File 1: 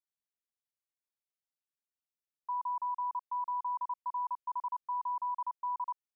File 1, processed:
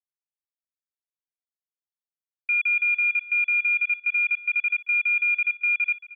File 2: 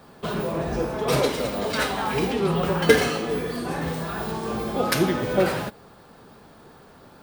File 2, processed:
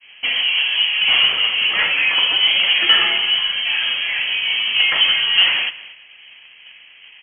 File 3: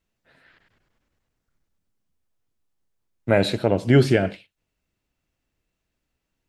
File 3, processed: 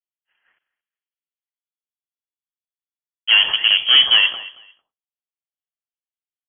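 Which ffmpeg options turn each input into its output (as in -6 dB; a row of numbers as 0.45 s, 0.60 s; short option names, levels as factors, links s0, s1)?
-filter_complex "[0:a]agate=range=0.0224:threshold=0.00562:ratio=3:detection=peak,equalizer=f=2000:w=1.4:g=-4.5,asplit=2[s0][s1];[s1]acrusher=bits=4:dc=4:mix=0:aa=0.000001,volume=0.282[s2];[s0][s2]amix=inputs=2:normalize=0,asplit=2[s3][s4];[s4]highpass=f=720:p=1,volume=14.1,asoftclip=type=tanh:threshold=0.891[s5];[s3][s5]amix=inputs=2:normalize=0,lowpass=f=1700:p=1,volume=0.501,asplit=2[s6][s7];[s7]aecho=0:1:225|450:0.112|0.0224[s8];[s6][s8]amix=inputs=2:normalize=0,lowpass=f=2900:t=q:w=0.5098,lowpass=f=2900:t=q:w=0.6013,lowpass=f=2900:t=q:w=0.9,lowpass=f=2900:t=q:w=2.563,afreqshift=-3400,volume=0.75"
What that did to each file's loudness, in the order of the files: +15.0 LU, +10.0 LU, +7.5 LU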